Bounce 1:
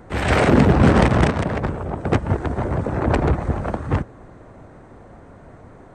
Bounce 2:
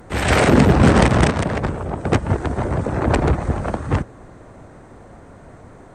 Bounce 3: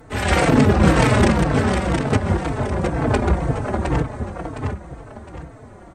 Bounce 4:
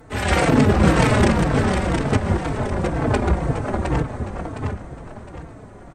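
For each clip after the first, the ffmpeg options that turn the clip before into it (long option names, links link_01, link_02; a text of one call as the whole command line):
ffmpeg -i in.wav -af "aemphasis=mode=production:type=cd,volume=1.5dB" out.wav
ffmpeg -i in.wav -filter_complex "[0:a]aecho=1:1:712|1424|2136|2848:0.562|0.197|0.0689|0.0241,asplit=2[link_01][link_02];[link_02]adelay=4,afreqshift=-2[link_03];[link_01][link_03]amix=inputs=2:normalize=1,volume=1dB" out.wav
ffmpeg -i in.wav -filter_complex "[0:a]asplit=7[link_01][link_02][link_03][link_04][link_05][link_06][link_07];[link_02]adelay=412,afreqshift=-81,volume=-15.5dB[link_08];[link_03]adelay=824,afreqshift=-162,volume=-19.9dB[link_09];[link_04]adelay=1236,afreqshift=-243,volume=-24.4dB[link_10];[link_05]adelay=1648,afreqshift=-324,volume=-28.8dB[link_11];[link_06]adelay=2060,afreqshift=-405,volume=-33.2dB[link_12];[link_07]adelay=2472,afreqshift=-486,volume=-37.7dB[link_13];[link_01][link_08][link_09][link_10][link_11][link_12][link_13]amix=inputs=7:normalize=0,volume=-1dB" out.wav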